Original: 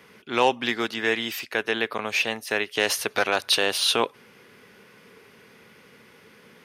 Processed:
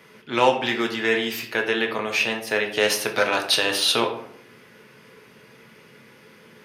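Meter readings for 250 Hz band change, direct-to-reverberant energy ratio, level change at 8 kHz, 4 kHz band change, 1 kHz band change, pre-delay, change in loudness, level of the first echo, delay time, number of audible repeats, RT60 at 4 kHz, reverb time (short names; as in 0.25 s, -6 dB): +3.5 dB, 2.0 dB, +1.5 dB, +1.5 dB, +2.0 dB, 3 ms, +2.0 dB, none, none, none, 0.40 s, 0.70 s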